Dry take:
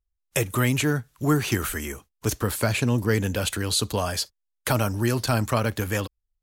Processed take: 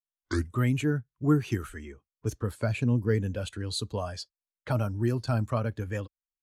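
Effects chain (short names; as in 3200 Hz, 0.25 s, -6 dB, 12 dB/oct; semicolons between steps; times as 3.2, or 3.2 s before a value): tape start at the beginning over 0.54 s; low-pass opened by the level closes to 2200 Hz, open at -20 dBFS; spectral expander 1.5:1; gain -3 dB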